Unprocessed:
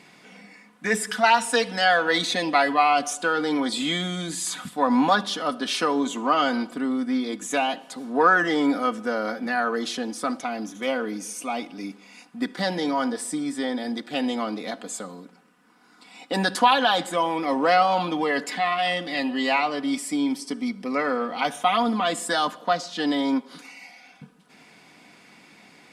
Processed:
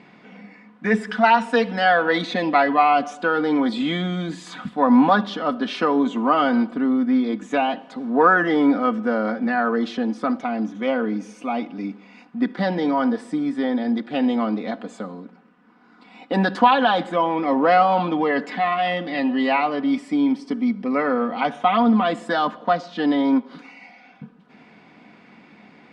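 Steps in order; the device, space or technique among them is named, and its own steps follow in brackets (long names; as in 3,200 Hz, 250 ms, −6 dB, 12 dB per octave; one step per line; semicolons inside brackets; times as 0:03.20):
phone in a pocket (low-pass filter 3,800 Hz 12 dB per octave; parametric band 220 Hz +5.5 dB 0.34 octaves; high-shelf EQ 2,500 Hz −9 dB)
level +4 dB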